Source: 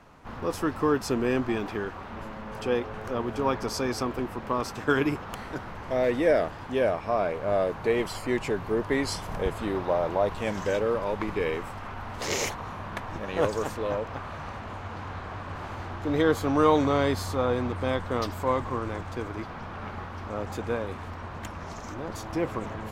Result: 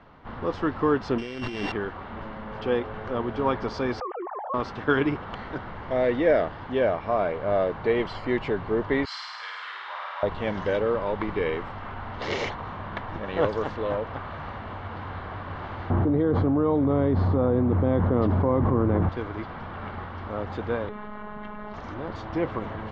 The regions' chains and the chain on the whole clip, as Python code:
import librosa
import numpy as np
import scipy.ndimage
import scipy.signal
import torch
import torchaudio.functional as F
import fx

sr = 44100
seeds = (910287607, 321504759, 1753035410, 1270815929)

y = fx.chain(x, sr, fx.sample_sort(block=16),
    fx.high_shelf(hz=4700.0, db=11.5),
    fx.over_compress(threshold_db=-32.0, ratio=-1.0), at=(1.18, 1.72))
y = fx.chain(y, sr, fx.sine_speech(),
    fx.bandpass_q(hz=780.0, q=3.4),
    fx.env_flatten(amount_pct=70), at=(4.0, 4.54))
y = fx.chain(y, sr, fx.highpass(hz=1200.0, slope=24),
    fx.room_flutter(wall_m=8.9, rt60_s=1.5), at=(9.05, 10.23))
y = fx.chain(y, sr, fx.bandpass_q(hz=170.0, q=0.6),
    fx.env_flatten(amount_pct=100), at=(15.9, 19.09))
y = fx.chain(y, sr, fx.robotise(hz=210.0),
    fx.air_absorb(metres=320.0),
    fx.env_flatten(amount_pct=70), at=(20.89, 21.74))
y = scipy.signal.sosfilt(scipy.signal.butter(4, 3900.0, 'lowpass', fs=sr, output='sos'), y)
y = fx.notch(y, sr, hz=2500.0, q=11.0)
y = F.gain(torch.from_numpy(y), 1.5).numpy()